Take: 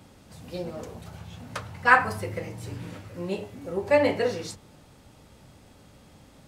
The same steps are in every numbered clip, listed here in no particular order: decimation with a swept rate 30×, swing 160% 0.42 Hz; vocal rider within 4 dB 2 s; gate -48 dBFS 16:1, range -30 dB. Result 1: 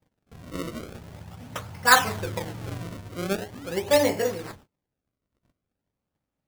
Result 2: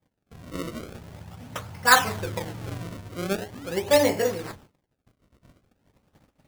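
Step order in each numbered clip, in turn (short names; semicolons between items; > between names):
decimation with a swept rate > vocal rider > gate; vocal rider > gate > decimation with a swept rate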